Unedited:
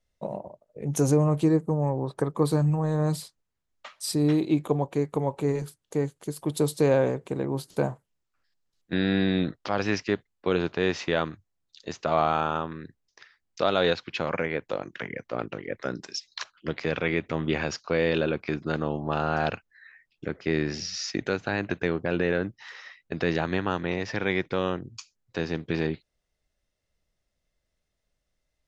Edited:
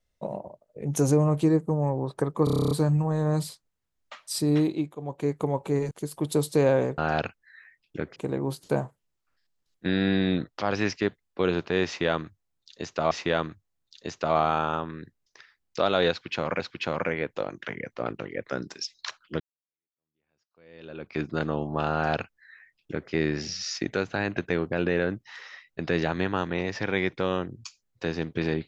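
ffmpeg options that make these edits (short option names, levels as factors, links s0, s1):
-filter_complex "[0:a]asplit=18[s0][s1][s2][s3][s4][s5][s6][s7][s8][s9][s10][s11][s12][s13][s14][s15][s16][s17];[s0]atrim=end=2.472[s18];[s1]atrim=start=2.438:end=2.472[s19];[s2]atrim=start=2.438:end=2.472[s20];[s3]atrim=start=2.438:end=2.472[s21];[s4]atrim=start=2.438:end=2.472[s22];[s5]atrim=start=2.438:end=2.472[s23];[s6]atrim=start=2.438:end=2.472[s24];[s7]atrim=start=2.438:end=2.472[s25];[s8]atrim=start=2.438:end=2.472[s26];[s9]atrim=start=2.438:end=4.69,asetpts=PTS-STARTPTS,afade=t=out:st=1.922:d=0.33:silence=0.16788[s27];[s10]atrim=start=4.69:end=4.7,asetpts=PTS-STARTPTS,volume=0.168[s28];[s11]atrim=start=4.7:end=5.642,asetpts=PTS-STARTPTS,afade=t=in:d=0.33:silence=0.16788[s29];[s12]atrim=start=6.158:end=7.232[s30];[s13]atrim=start=19.258:end=20.442[s31];[s14]atrim=start=7.228:end=12.182[s32];[s15]atrim=start=10.928:end=14.422[s33];[s16]atrim=start=13.928:end=16.73,asetpts=PTS-STARTPTS,afade=t=out:st=2.798:d=0.004:c=hsin[s34];[s17]atrim=start=16.73,asetpts=PTS-STARTPTS,afade=t=in:d=1.79:c=exp[s35];[s18][s19]acrossfade=d=0.004:c1=hsin:c2=hsin[s36];[s36][s20]acrossfade=d=0.004:c1=hsin:c2=hsin[s37];[s37][s21]acrossfade=d=0.004:c1=hsin:c2=hsin[s38];[s38][s22]acrossfade=d=0.004:c1=hsin:c2=hsin[s39];[s39][s23]acrossfade=d=0.004:c1=hsin:c2=hsin[s40];[s40][s24]acrossfade=d=0.004:c1=hsin:c2=hsin[s41];[s41][s25]acrossfade=d=0.004:c1=hsin:c2=hsin[s42];[s42][s26]acrossfade=d=0.004:c1=hsin:c2=hsin[s43];[s27][s28][s29]concat=n=3:v=0:a=1[s44];[s43][s44]acrossfade=d=0.004:c1=hsin:c2=hsin[s45];[s45][s30]acrossfade=d=0.004:c1=hsin:c2=hsin[s46];[s46][s31]acrossfade=d=0.004:c1=hsin:c2=hsin[s47];[s47][s32]acrossfade=d=0.004:c1=hsin:c2=hsin[s48];[s48][s33]acrossfade=d=0.004:c1=hsin:c2=hsin[s49];[s34][s35]concat=n=2:v=0:a=1[s50];[s49][s50]acrossfade=d=0.004:c1=hsin:c2=hsin"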